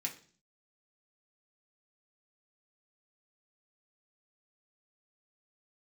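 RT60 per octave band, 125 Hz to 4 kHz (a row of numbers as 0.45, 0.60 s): 0.70, 0.65, 0.50, 0.40, 0.40, 0.50 s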